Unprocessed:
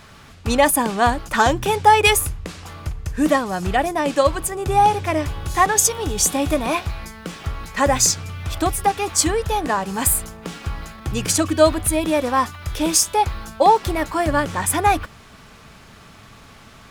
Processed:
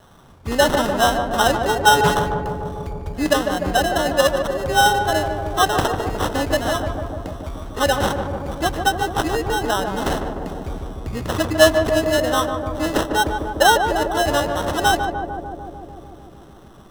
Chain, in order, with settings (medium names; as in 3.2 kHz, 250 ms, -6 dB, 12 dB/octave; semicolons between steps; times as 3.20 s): dynamic bell 660 Hz, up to +7 dB, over -31 dBFS, Q 1.9; sample-and-hold 19×; wow and flutter 20 cents; on a send: filtered feedback delay 149 ms, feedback 83%, low-pass 1.2 kHz, level -5 dB; on the sum: loudspeaker Doppler distortion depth 0.13 ms; trim -4.5 dB